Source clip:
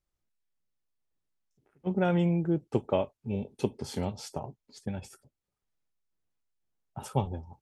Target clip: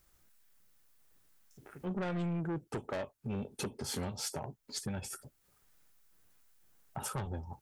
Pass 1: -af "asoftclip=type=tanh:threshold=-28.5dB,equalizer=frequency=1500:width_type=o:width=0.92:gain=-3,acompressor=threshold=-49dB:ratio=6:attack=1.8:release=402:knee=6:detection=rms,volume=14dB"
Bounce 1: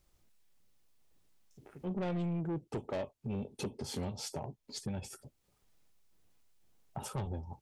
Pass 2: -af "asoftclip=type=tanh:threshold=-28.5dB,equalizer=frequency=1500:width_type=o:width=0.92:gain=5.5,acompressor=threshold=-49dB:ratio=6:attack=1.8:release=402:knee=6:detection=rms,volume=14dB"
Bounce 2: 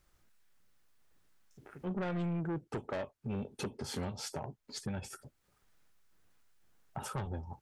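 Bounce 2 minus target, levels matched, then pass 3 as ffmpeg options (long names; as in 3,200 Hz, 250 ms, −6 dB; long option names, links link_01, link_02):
8,000 Hz band −5.0 dB
-af "asoftclip=type=tanh:threshold=-28.5dB,equalizer=frequency=1500:width_type=o:width=0.92:gain=5.5,acompressor=threshold=-49dB:ratio=6:attack=1.8:release=402:knee=6:detection=rms,highshelf=frequency=7800:gain=11.5,volume=14dB"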